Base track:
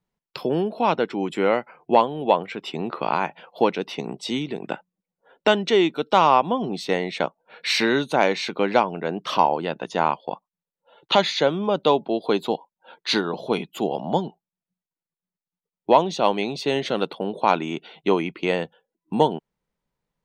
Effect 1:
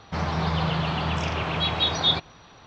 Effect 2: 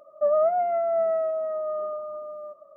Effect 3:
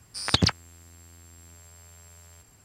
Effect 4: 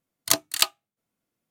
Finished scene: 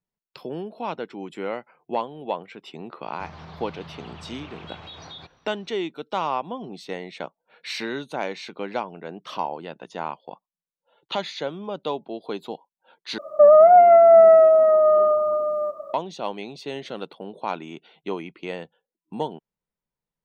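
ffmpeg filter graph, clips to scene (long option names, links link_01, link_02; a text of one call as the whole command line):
ffmpeg -i bed.wav -i cue0.wav -i cue1.wav -filter_complex "[0:a]volume=-9.5dB[link_01];[1:a]acompressor=threshold=-25dB:ratio=6:attack=3.2:release=140:knee=1:detection=peak[link_02];[2:a]alimiter=level_in=18dB:limit=-1dB:release=50:level=0:latency=1[link_03];[link_01]asplit=2[link_04][link_05];[link_04]atrim=end=13.184[link_06];[link_03]atrim=end=2.76,asetpts=PTS-STARTPTS,volume=-5dB[link_07];[link_05]atrim=start=15.936[link_08];[link_02]atrim=end=2.66,asetpts=PTS-STARTPTS,volume=-12.5dB,afade=type=in:duration=0.004:curve=hsin,afade=type=out:start_time=2.656:duration=0.004:curve=hsin,adelay=3070[link_09];[link_06][link_07]acrossfade=duration=0.004:curve1=hsin:curve2=hsin[link_10];[link_10][link_08]acrossfade=duration=0.004:curve1=hsin:curve2=hsin[link_11];[link_11][link_09]amix=inputs=2:normalize=0" out.wav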